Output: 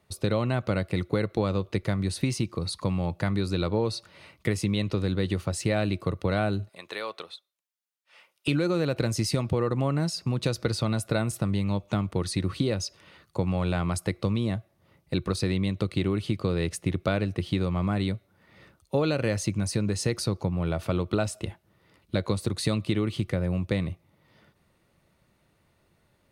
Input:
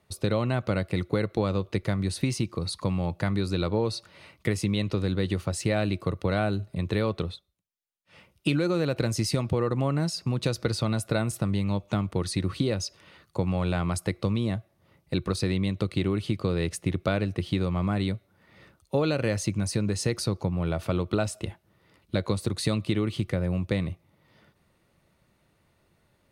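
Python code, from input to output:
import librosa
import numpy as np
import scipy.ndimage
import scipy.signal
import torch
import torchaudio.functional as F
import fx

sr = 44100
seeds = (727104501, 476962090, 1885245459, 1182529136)

y = fx.highpass(x, sr, hz=730.0, slope=12, at=(6.69, 8.48))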